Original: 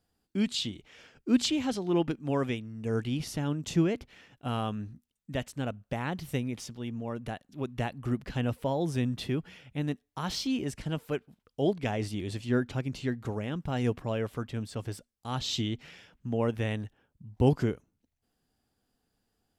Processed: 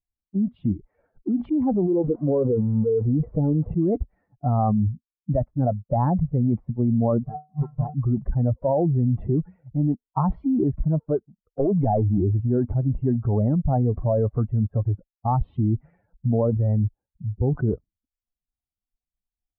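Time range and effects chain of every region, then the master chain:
1.88–3.71 switching spikes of -22 dBFS + de-esser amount 85% + bell 470 Hz +13 dB 0.31 oct
7.23–7.94 half-waves squared off + upward compressor, threshold -36 dBFS + resonator 150 Hz, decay 0.42 s, harmonics odd, mix 90%
11.6–12.18 HPF 80 Hz 24 dB/oct + compressor 4:1, threshold -31 dBFS + sample leveller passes 2
whole clip: per-bin expansion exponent 2; Bessel low-pass 520 Hz, order 6; fast leveller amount 100%

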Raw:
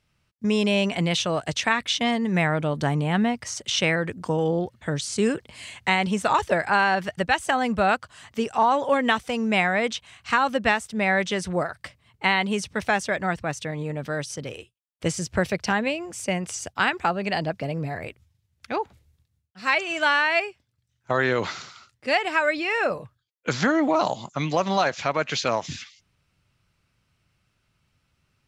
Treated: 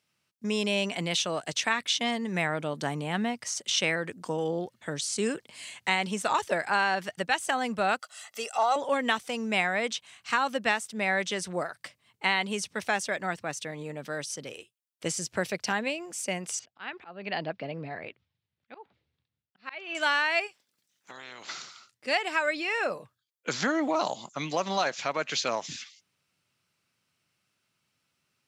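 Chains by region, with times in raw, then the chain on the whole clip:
7.99–8.76 HPF 460 Hz + high shelf 5900 Hz +6 dB + comb 1.5 ms, depth 75%
16.59–19.95 LPF 3900 Hz 24 dB/oct + auto swell 0.313 s
20.46–21.48 spectral limiter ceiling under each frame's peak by 20 dB + compressor 2.5:1, threshold -45 dBFS
whole clip: HPF 190 Hz 12 dB/oct; high shelf 3700 Hz +7.5 dB; gain -6 dB

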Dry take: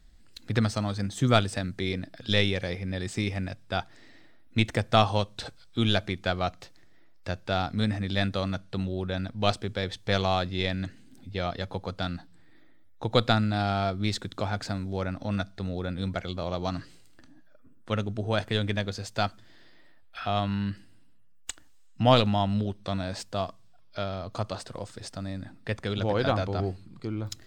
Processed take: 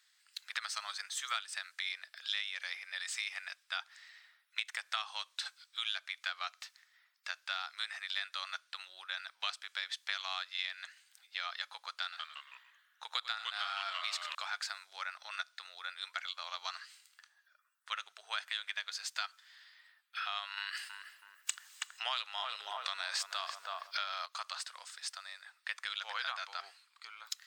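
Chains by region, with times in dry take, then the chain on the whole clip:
12.03–14.35 echo 94 ms -14 dB + echoes that change speed 0.161 s, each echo -2 st, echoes 3, each echo -6 dB
20.57–24.26 bell 350 Hz +7 dB 0.76 oct + darkening echo 0.325 s, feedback 39%, low-pass 1100 Hz, level -7.5 dB + fast leveller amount 50%
whole clip: inverse Chebyshev high-pass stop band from 270 Hz, stop band 70 dB; compressor 6:1, threshold -35 dBFS; gain +1.5 dB

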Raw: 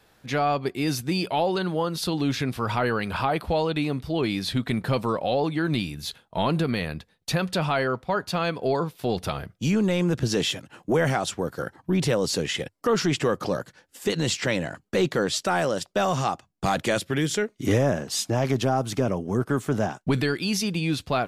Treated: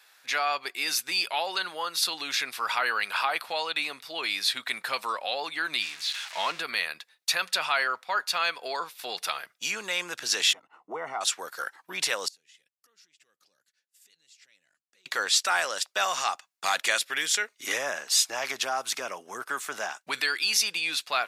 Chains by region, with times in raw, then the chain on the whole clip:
5.82–6.6 switching spikes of -21 dBFS + LPF 3400 Hz
10.53–11.21 polynomial smoothing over 65 samples + notch 560 Hz, Q 5.1
12.28–15.06 passive tone stack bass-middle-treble 10-0-1 + compressor 3:1, threshold -59 dBFS
whole clip: HPF 1400 Hz 12 dB/oct; notch 3100 Hz, Q 19; gain +5.5 dB

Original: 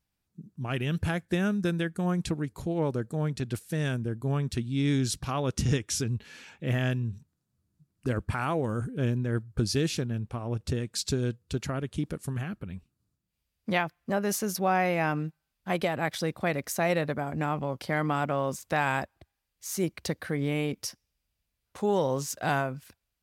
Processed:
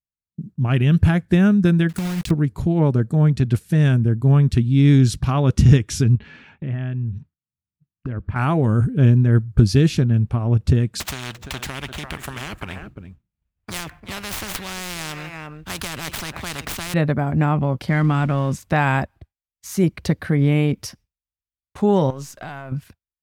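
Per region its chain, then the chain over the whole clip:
1.89–2.31 block floating point 3-bit + high shelf 2100 Hz +11 dB + compressor 12:1, threshold -31 dBFS
6.15–8.36 LPF 2900 Hz + compressor 4:1, threshold -38 dBFS + mismatched tape noise reduction encoder only
11–16.94 median filter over 9 samples + echo 0.345 s -22 dB + spectral compressor 10:1
17.88–18.58 zero-crossing step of -43 dBFS + LPF 11000 Hz + bell 660 Hz -6 dB 1.8 oct
22.1–22.72 half-wave gain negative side -3 dB + low shelf 370 Hz -8 dB + compressor, threshold -37 dBFS
whole clip: notch 500 Hz, Q 12; expander -47 dBFS; tone controls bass +9 dB, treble -6 dB; gain +7 dB

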